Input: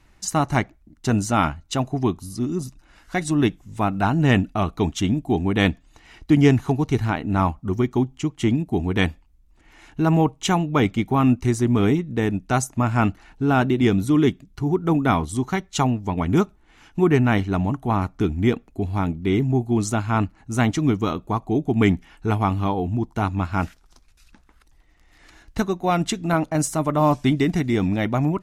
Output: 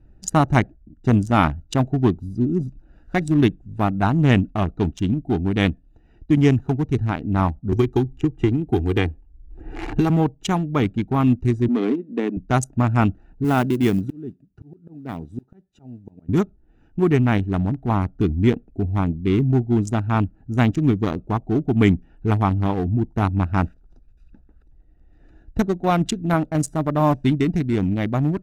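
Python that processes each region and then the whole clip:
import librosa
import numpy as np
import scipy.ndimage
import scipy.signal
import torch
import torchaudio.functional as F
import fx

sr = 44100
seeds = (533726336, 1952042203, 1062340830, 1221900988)

y = fx.chain(x, sr, fx.comb(ms=2.5, depth=0.58),
    fx.band_squash(depth_pct=100), at=(7.72, 10.1))
y = fx.chain(y, sr, fx.cheby1_highpass(hz=230.0, order=4),
    fx.air_absorb(metres=100.0),
    fx.band_squash(depth_pct=40), at=(11.68, 12.37))
y = fx.chain(y, sr, fx.highpass(hz=110.0, slope=12),
    fx.auto_swell(attack_ms=713.0),
    fx.mod_noise(seeds[0], snr_db=21), at=(13.44, 16.29))
y = fx.wiener(y, sr, points=41)
y = fx.low_shelf(y, sr, hz=210.0, db=3.0)
y = fx.rider(y, sr, range_db=10, speed_s=2.0)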